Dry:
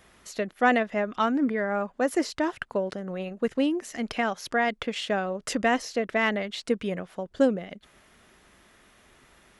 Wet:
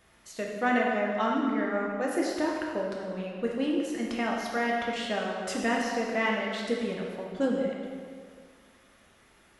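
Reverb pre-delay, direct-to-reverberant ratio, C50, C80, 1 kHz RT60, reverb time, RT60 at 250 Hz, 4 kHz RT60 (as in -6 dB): 3 ms, -2.5 dB, 0.5 dB, 2.5 dB, 2.0 s, 1.9 s, 1.9 s, 1.6 s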